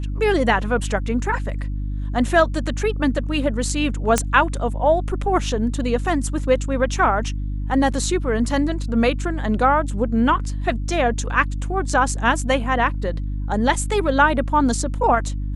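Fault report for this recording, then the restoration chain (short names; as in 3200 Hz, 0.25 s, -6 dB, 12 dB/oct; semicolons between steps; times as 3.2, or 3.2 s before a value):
hum 50 Hz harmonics 6 -25 dBFS
4.18 pop -3 dBFS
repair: de-click; de-hum 50 Hz, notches 6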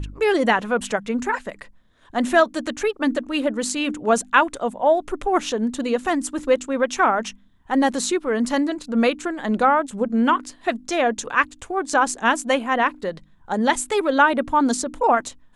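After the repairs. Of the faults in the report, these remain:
none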